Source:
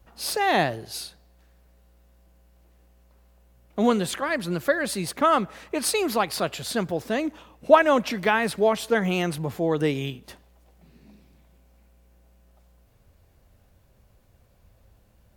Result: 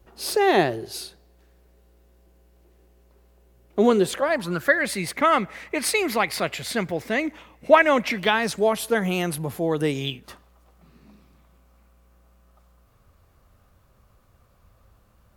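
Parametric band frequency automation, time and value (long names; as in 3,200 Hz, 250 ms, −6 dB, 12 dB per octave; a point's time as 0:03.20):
parametric band +12.5 dB 0.4 octaves
0:04.04 380 Hz
0:04.75 2,100 Hz
0:08.11 2,100 Hz
0:08.72 11,000 Hz
0:09.86 11,000 Hz
0:10.28 1,200 Hz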